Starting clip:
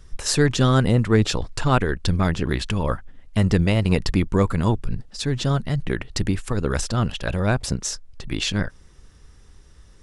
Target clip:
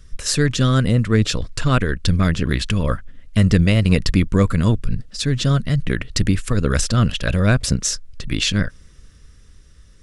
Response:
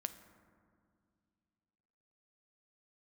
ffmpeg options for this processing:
-af "equalizer=f=840:t=o:w=0.52:g=-14,dynaudnorm=f=390:g=9:m=5dB,equalizer=f=370:t=o:w=0.44:g=-5.5,volume=2dB"

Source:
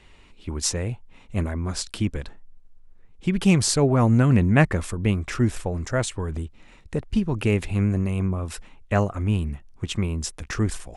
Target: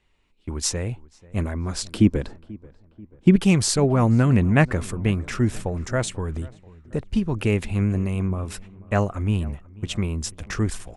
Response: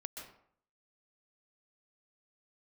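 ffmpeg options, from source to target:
-filter_complex "[0:a]agate=range=-15dB:threshold=-39dB:ratio=16:detection=peak,asettb=1/sr,asplit=3[a][b][c];[a]atrim=end=1.914[d];[b]atrim=start=1.91:end=3.36,asetpts=PTS-STARTPTS,afade=t=in:d=0.004:c=qsin,afade=t=out:st=1.446:d=0.004:c=qsin,equalizer=f=290:w=0.44:g=10.5[e];[c]atrim=start=3.356[f];[d][e]acrossfade=d=0.004:c1=hsin:c2=qsin[g];[g][f]acrossfade=d=0.004:c1=qsin:c2=hsin,asplit=2[h][i];[i]adelay=487,lowpass=f=1.9k:p=1,volume=-21.5dB,asplit=2[j][k];[k]adelay=487,lowpass=f=1.9k:p=1,volume=0.54,asplit=2[l][m];[m]adelay=487,lowpass=f=1.9k:p=1,volume=0.54,asplit=2[n][o];[o]adelay=487,lowpass=f=1.9k:p=1,volume=0.54[p];[h][j][l][n][p]amix=inputs=5:normalize=0"

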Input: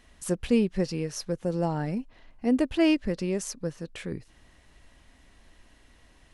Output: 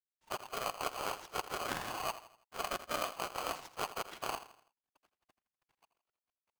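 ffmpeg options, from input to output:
-filter_complex "[0:a]areverse,acompressor=threshold=-38dB:ratio=8,areverse,acrusher=bits=6:mix=0:aa=0.5,asplit=2[a][b];[b]asetrate=35002,aresample=44100,atempo=1.25992,volume=-5dB[c];[a][c]amix=inputs=2:normalize=0,afftfilt=real='hypot(re,im)*cos(2*PI*random(0))':imag='hypot(re,im)*sin(2*PI*random(1))':win_size=512:overlap=0.75,aeval=exprs='0.0237*(cos(1*acos(clip(val(0)/0.0237,-1,1)))-cos(1*PI/2))+0.00168*(cos(2*acos(clip(val(0)/0.0237,-1,1)))-cos(2*PI/2))+0.0075*(cos(6*acos(clip(val(0)/0.0237,-1,1)))-cos(6*PI/2))+0.000335*(cos(7*acos(clip(val(0)/0.0237,-1,1)))-cos(7*PI/2))+0.00596*(cos(8*acos(clip(val(0)/0.0237,-1,1)))-cos(8*PI/2))':c=same,adynamicsmooth=sensitivity=6.5:basefreq=2k,asplit=2[d][e];[e]aecho=0:1:79|158|237|316:0.211|0.0888|0.0373|0.0157[f];[d][f]amix=inputs=2:normalize=0,asetrate=42336,aresample=44100,aeval=exprs='val(0)*sgn(sin(2*PI*910*n/s))':c=same,volume=6.5dB"

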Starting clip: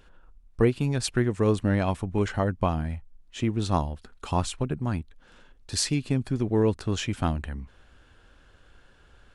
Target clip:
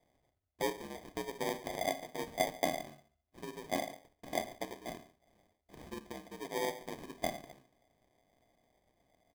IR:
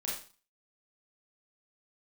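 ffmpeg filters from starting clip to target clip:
-filter_complex "[0:a]asuperstop=centerf=1700:order=8:qfactor=4.5,equalizer=f=360:t=o:w=0.65:g=6,aeval=exprs='val(0)*sin(2*PI*63*n/s)':c=same,asplit=3[a][b][c];[a]bandpass=f=730:t=q:w=8,volume=0dB[d];[b]bandpass=f=1.09k:t=q:w=8,volume=-6dB[e];[c]bandpass=f=2.44k:t=q:w=8,volume=-9dB[f];[d][e][f]amix=inputs=3:normalize=0,asplit=2[g][h];[h]adelay=139.9,volume=-20dB,highshelf=f=4k:g=-3.15[i];[g][i]amix=inputs=2:normalize=0,asplit=2[j][k];[1:a]atrim=start_sample=2205[l];[k][l]afir=irnorm=-1:irlink=0,volume=-10dB[m];[j][m]amix=inputs=2:normalize=0,acrusher=samples=32:mix=1:aa=0.000001,volume=1dB"

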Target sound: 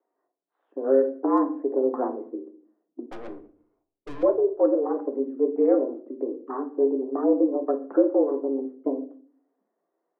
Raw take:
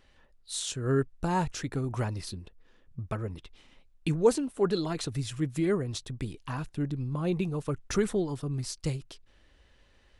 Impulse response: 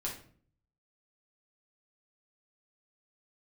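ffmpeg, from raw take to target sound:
-filter_complex "[0:a]highshelf=f=2.7k:g=-6,afwtdn=0.0112,highpass=f=170:t=q:w=0.5412,highpass=f=170:t=q:w=1.307,lowpass=f=3.3k:t=q:w=0.5176,lowpass=f=3.3k:t=q:w=0.7071,lowpass=f=3.3k:t=q:w=1.932,afreqshift=130,bandreject=f=600:w=13,acrossover=split=380|1200[a][b][c];[b]alimiter=level_in=2.5dB:limit=-24dB:level=0:latency=1:release=463,volume=-2.5dB[d];[c]acrusher=bits=3:mix=0:aa=0.5[e];[a][d][e]amix=inputs=3:normalize=0,asettb=1/sr,asplit=3[f][g][h];[f]atrim=end=3.084[i];[g]atrim=start=3.08:end=4.23,asetpts=PTS-STARTPTS,afade=t=in:d=0.004:c=qsin,afade=t=out:st=1.146:d=0.004:c=qsin,aeval=exprs='(tanh(200*val(0)+0.4)-tanh(0.4))/200':c=same[j];[h]atrim=start=4.226[k];[i][j]acrossfade=d=0.004:c1=hsin:c2=qsin[l];[l][k]acrossfade=d=0.004:c1=qsin:c2=hsin,asplit=2[m][n];[1:a]atrim=start_sample=2205,highshelf=f=3.8k:g=-10[o];[n][o]afir=irnorm=-1:irlink=0,volume=-2dB[p];[m][p]amix=inputs=2:normalize=0,volume=5.5dB"

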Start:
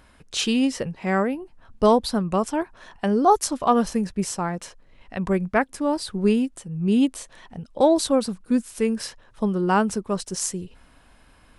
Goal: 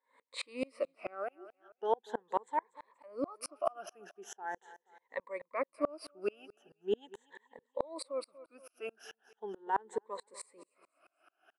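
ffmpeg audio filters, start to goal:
-af "afftfilt=real='re*pow(10,19/40*sin(2*PI*(1*log(max(b,1)*sr/1024/100)/log(2)-(0.4)*(pts-256)/sr)))':imag='im*pow(10,19/40*sin(2*PI*(1*log(max(b,1)*sr/1024/100)/log(2)-(0.4)*(pts-256)/sr)))':win_size=1024:overlap=0.75,highpass=f=420:w=0.5412,highpass=f=420:w=1.3066,equalizer=f=5k:t=o:w=1.2:g=-9.5,alimiter=limit=-12dB:level=0:latency=1:release=230,aemphasis=mode=reproduction:type=50fm,aecho=1:1:239|478|717:0.106|0.0392|0.0145,aeval=exprs='val(0)*pow(10,-33*if(lt(mod(-4.6*n/s,1),2*abs(-4.6)/1000),1-mod(-4.6*n/s,1)/(2*abs(-4.6)/1000),(mod(-4.6*n/s,1)-2*abs(-4.6)/1000)/(1-2*abs(-4.6)/1000))/20)':c=same,volume=-4dB"

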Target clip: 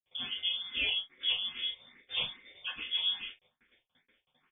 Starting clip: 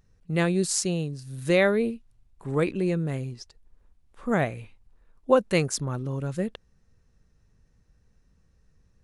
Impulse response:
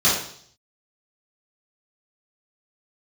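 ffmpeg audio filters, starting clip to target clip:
-filter_complex "[0:a]acompressor=threshold=-41dB:ratio=2.5,aeval=exprs='val(0)*sin(2*PI*46*n/s)':c=same,aeval=exprs='val(0)+0.00158*sin(2*PI*810*n/s)':c=same,aresample=16000,aeval=exprs='val(0)*gte(abs(val(0)),0.00335)':c=same,aresample=44100,flanger=delay=17:depth=6.8:speed=1.2,aecho=1:1:84:0.316[a];[1:a]atrim=start_sample=2205,afade=t=out:st=0.17:d=0.01,atrim=end_sample=7938[b];[a][b]afir=irnorm=-1:irlink=0,aexciter=amount=9.2:drive=7.4:freq=2.1k,asetrate=88200,aresample=44100,lowpass=f=3.1k:t=q:w=0.5098,lowpass=f=3.1k:t=q:w=0.6013,lowpass=f=3.1k:t=q:w=0.9,lowpass=f=3.1k:t=q:w=2.563,afreqshift=-3700,asplit=2[c][d];[d]afreqshift=2.4[e];[c][e]amix=inputs=2:normalize=1,volume=-8dB"

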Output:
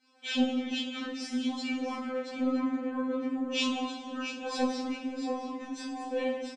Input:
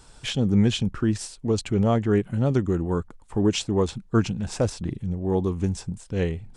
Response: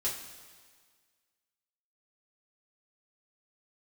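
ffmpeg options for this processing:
-filter_complex "[0:a]agate=range=-7dB:threshold=-37dB:ratio=16:detection=peak,dynaudnorm=f=130:g=5:m=12dB,highpass=140,lowpass=3.4k,aecho=1:1:674:0.355,asplit=3[a][b][c];[a]afade=t=out:st=0.78:d=0.02[d];[b]flanger=delay=2.2:depth=6.2:regen=-33:speed=1.2:shape=sinusoidal,afade=t=in:st=0.78:d=0.02,afade=t=out:st=3.51:d=0.02[e];[c]afade=t=in:st=3.51:d=0.02[f];[d][e][f]amix=inputs=3:normalize=0,acompressor=threshold=-20dB:ratio=6,flanger=delay=15:depth=3.7:speed=0.6[g];[1:a]atrim=start_sample=2205[h];[g][h]afir=irnorm=-1:irlink=0,afftfilt=real='re*3.46*eq(mod(b,12),0)':imag='im*3.46*eq(mod(b,12),0)':win_size=2048:overlap=0.75"

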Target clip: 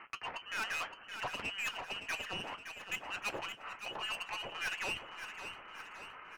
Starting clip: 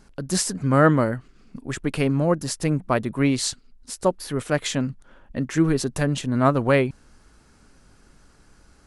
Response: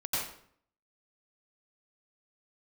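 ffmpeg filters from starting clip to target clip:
-filter_complex "[0:a]areverse,acompressor=threshold=-34dB:ratio=10,areverse,aphaser=in_gain=1:out_gain=1:delay=4.9:decay=0.26:speed=0.87:type=sinusoidal,asetrate=61299,aresample=44100,highpass=840,asplit=2[a][b];[b]aeval=exprs='val(0)*gte(abs(val(0)),0.00708)':c=same,volume=-10dB[c];[a][c]amix=inputs=2:normalize=0,highshelf=f=2k:g=9.5,lowpass=f=2.8k:t=q:w=0.5098,lowpass=f=2.8k:t=q:w=0.6013,lowpass=f=2.8k:t=q:w=0.9,lowpass=f=2.8k:t=q:w=2.563,afreqshift=-3300,aeval=exprs='(tanh(112*val(0)+0.1)-tanh(0.1))/112':c=same,aecho=1:1:567|1134|1701|2268|2835|3402:0.355|0.188|0.0997|0.0528|0.028|0.0148,flanger=delay=8.6:depth=2.2:regen=-58:speed=0.23:shape=sinusoidal,volume=11.5dB"

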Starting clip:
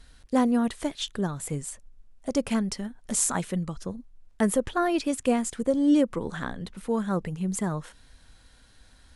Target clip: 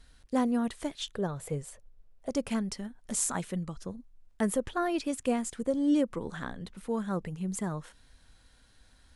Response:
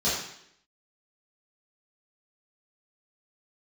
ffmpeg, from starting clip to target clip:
-filter_complex "[0:a]asettb=1/sr,asplit=3[a][b][c];[a]atrim=end=1.154[d];[b]atrim=start=1.15:end=2.29,asetpts=PTS-STARTPTS,afade=t=in:d=0.004:c=qsin,afade=t=out:st=1.136:d=0.004:c=qsin,equalizer=f=125:t=o:w=1:g=4,equalizer=f=250:t=o:w=1:g=-6,equalizer=f=500:t=o:w=1:g=9,equalizer=f=8k:t=o:w=1:g=-6[e];[c]atrim=start=2.286[f];[d][e]acrossfade=d=0.004:c1=hsin:c2=qsin[g];[g][f]acrossfade=d=0.004:c1=qsin:c2=hsin,volume=-5dB"

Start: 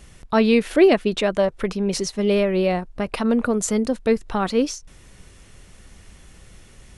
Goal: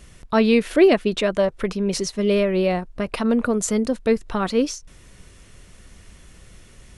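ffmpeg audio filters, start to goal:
-af "bandreject=f=810:w=12"

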